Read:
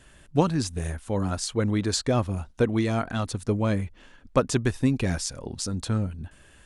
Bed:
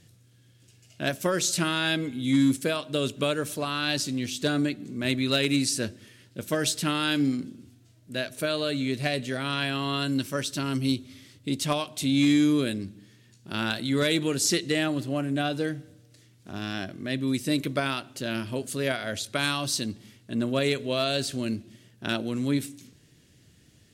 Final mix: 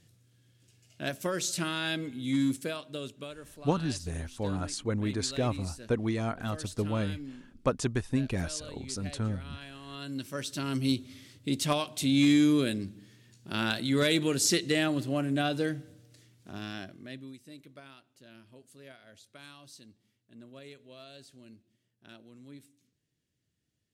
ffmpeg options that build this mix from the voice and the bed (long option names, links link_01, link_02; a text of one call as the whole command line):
ffmpeg -i stem1.wav -i stem2.wav -filter_complex "[0:a]adelay=3300,volume=-6dB[link_01];[1:a]volume=10.5dB,afade=type=out:start_time=2.46:duration=0.88:silence=0.251189,afade=type=in:start_time=9.85:duration=1.13:silence=0.149624,afade=type=out:start_time=16.07:duration=1.3:silence=0.0794328[link_02];[link_01][link_02]amix=inputs=2:normalize=0" out.wav